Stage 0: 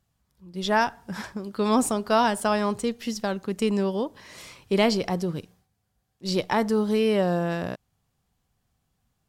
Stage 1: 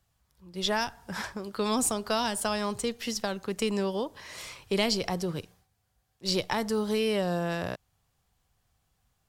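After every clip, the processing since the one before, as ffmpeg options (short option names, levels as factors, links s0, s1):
-filter_complex "[0:a]equalizer=f=220:t=o:w=1.6:g=-8,acrossover=split=290|3000[s0][s1][s2];[s1]acompressor=threshold=0.0224:ratio=3[s3];[s0][s3][s2]amix=inputs=3:normalize=0,volume=1.33"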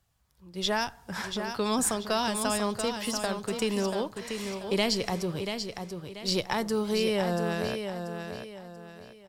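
-af "aecho=1:1:686|1372|2058|2744:0.447|0.156|0.0547|0.0192"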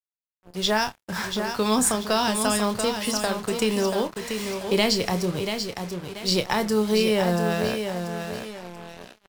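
-filter_complex "[0:a]acrusher=bits=6:mix=0:aa=0.5,asplit=2[s0][s1];[s1]adelay=28,volume=0.299[s2];[s0][s2]amix=inputs=2:normalize=0,volume=1.78"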